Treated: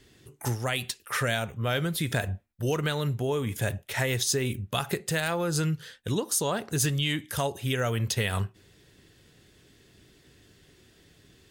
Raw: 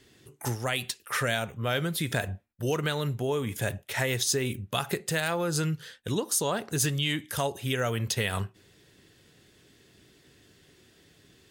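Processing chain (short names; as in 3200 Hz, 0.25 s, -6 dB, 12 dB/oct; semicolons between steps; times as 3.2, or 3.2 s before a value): low shelf 65 Hz +11 dB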